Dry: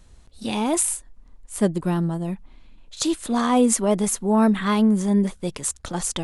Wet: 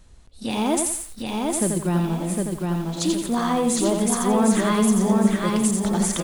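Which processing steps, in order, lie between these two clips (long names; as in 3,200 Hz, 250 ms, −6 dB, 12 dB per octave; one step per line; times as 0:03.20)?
brickwall limiter −13.5 dBFS, peak gain reduction 7.5 dB
repeating echo 758 ms, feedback 33%, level −3 dB
feedback echo at a low word length 86 ms, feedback 35%, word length 7 bits, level −4.5 dB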